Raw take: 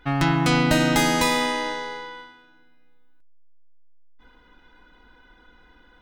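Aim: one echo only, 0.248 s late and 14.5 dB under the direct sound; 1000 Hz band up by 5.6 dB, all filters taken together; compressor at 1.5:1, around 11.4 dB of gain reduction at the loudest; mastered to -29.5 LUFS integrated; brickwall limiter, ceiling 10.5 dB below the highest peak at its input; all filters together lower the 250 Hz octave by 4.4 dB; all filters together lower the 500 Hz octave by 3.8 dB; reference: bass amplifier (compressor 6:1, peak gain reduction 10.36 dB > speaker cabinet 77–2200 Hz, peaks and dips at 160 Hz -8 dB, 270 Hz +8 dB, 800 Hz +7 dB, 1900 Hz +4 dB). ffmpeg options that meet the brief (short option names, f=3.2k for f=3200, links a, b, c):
-af "equalizer=f=250:t=o:g=-8.5,equalizer=f=500:t=o:g=-6,equalizer=f=1k:t=o:g=4,acompressor=threshold=-50dB:ratio=1.5,alimiter=level_in=3.5dB:limit=-24dB:level=0:latency=1,volume=-3.5dB,aecho=1:1:248:0.188,acompressor=threshold=-43dB:ratio=6,highpass=f=77:w=0.5412,highpass=f=77:w=1.3066,equalizer=f=160:t=q:w=4:g=-8,equalizer=f=270:t=q:w=4:g=8,equalizer=f=800:t=q:w=4:g=7,equalizer=f=1.9k:t=q:w=4:g=4,lowpass=f=2.2k:w=0.5412,lowpass=f=2.2k:w=1.3066,volume=16dB"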